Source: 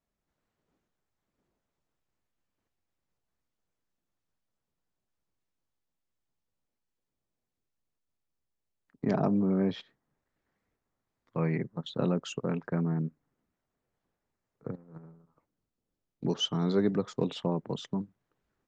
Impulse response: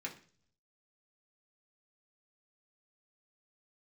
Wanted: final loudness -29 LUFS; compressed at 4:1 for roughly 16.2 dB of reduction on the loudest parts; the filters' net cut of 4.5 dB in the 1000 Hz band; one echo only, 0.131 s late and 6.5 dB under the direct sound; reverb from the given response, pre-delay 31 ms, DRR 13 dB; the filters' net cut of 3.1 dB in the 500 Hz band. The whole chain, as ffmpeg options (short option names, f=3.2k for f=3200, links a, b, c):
-filter_complex "[0:a]equalizer=f=500:t=o:g=-3,equalizer=f=1k:t=o:g=-5,acompressor=threshold=-45dB:ratio=4,aecho=1:1:131:0.473,asplit=2[a][b];[1:a]atrim=start_sample=2205,adelay=31[c];[b][c]afir=irnorm=-1:irlink=0,volume=-13dB[d];[a][d]amix=inputs=2:normalize=0,volume=17.5dB"